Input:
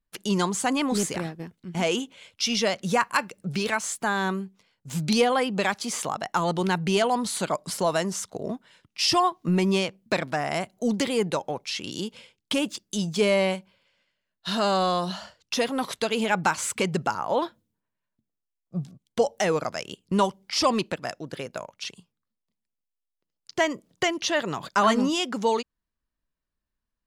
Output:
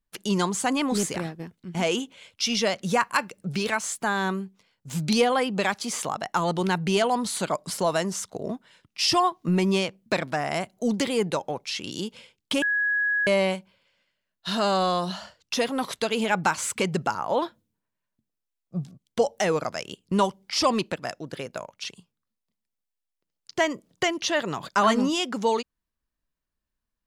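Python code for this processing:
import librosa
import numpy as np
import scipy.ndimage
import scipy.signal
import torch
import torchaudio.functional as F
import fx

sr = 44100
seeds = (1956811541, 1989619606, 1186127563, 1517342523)

y = fx.edit(x, sr, fx.bleep(start_s=12.62, length_s=0.65, hz=1670.0, db=-21.0), tone=tone)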